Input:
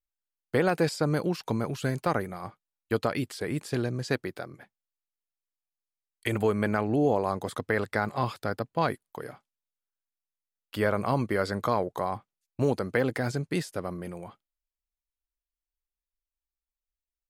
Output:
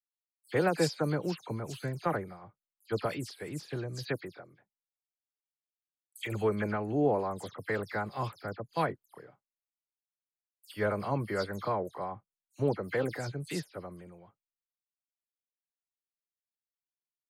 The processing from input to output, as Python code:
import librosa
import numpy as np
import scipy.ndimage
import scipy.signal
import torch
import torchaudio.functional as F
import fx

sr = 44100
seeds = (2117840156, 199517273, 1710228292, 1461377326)

y = fx.spec_delay(x, sr, highs='early', ms=103)
y = fx.band_widen(y, sr, depth_pct=70)
y = y * 10.0 ** (-5.0 / 20.0)